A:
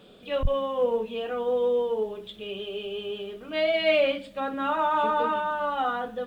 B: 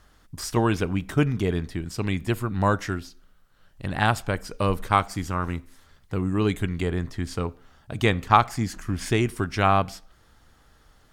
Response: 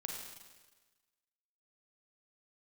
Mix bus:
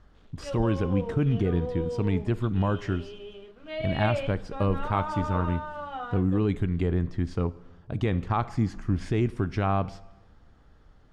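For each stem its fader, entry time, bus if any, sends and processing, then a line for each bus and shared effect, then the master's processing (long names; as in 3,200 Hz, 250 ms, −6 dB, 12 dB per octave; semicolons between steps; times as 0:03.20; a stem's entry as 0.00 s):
+2.5 dB, 0.15 s, no send, dead-zone distortion −52 dBFS; automatic ducking −11 dB, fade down 0.45 s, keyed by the second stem
−3.5 dB, 0.00 s, send −15 dB, tilt shelving filter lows +5 dB, about 760 Hz; brickwall limiter −12 dBFS, peak gain reduction 9.5 dB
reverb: on, RT60 1.3 s, pre-delay 35 ms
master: Bessel low-pass filter 4,300 Hz, order 2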